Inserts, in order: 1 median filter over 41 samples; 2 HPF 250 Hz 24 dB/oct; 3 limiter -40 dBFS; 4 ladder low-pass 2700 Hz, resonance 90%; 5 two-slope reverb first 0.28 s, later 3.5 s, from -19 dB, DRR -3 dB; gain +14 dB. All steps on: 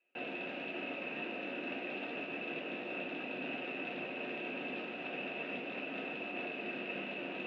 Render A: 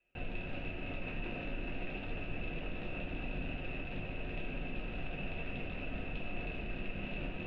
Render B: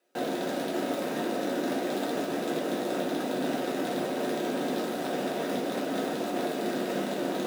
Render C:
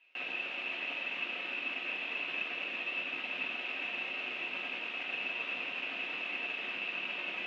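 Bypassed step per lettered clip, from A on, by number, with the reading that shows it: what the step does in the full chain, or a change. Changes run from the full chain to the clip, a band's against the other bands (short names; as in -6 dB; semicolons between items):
2, 125 Hz band +17.5 dB; 4, 2 kHz band -12.0 dB; 1, 250 Hz band -12.0 dB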